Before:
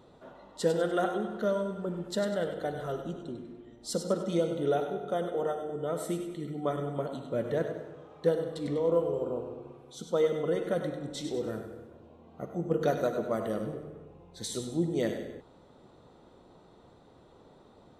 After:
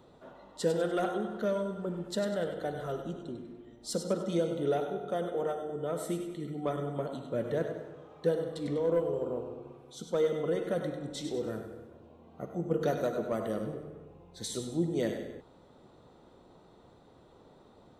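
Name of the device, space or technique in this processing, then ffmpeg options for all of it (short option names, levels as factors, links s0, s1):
one-band saturation: -filter_complex "[0:a]acrossover=split=470|3700[s0][s1][s2];[s1]asoftclip=type=tanh:threshold=0.0531[s3];[s0][s3][s2]amix=inputs=3:normalize=0,volume=0.891"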